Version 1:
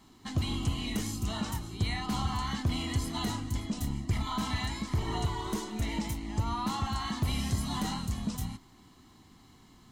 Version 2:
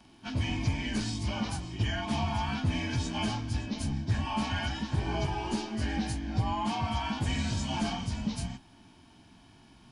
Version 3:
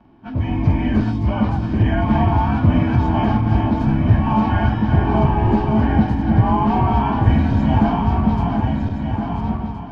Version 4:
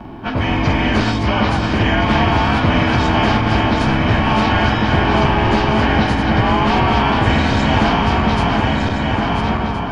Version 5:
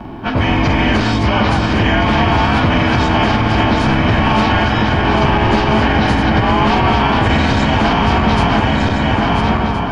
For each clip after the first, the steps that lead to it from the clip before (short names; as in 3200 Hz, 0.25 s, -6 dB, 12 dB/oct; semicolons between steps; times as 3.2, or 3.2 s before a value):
inharmonic rescaling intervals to 90%; gain +3.5 dB
regenerating reverse delay 0.684 s, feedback 72%, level -5.5 dB; LPF 1200 Hz 12 dB/oct; AGC gain up to 7 dB; gain +7 dB
spectral compressor 2:1
maximiser +6.5 dB; gain -3 dB